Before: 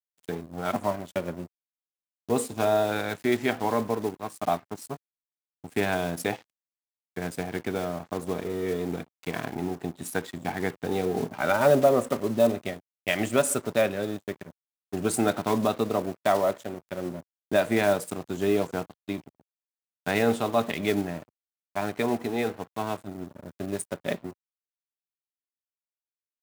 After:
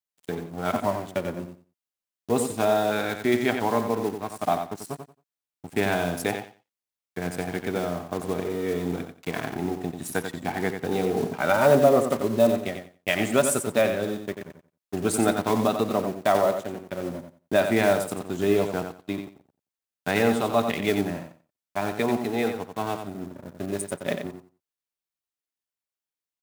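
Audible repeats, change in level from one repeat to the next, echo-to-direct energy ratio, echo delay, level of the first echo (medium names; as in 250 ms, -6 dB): 2, -14.5 dB, -7.5 dB, 90 ms, -7.5 dB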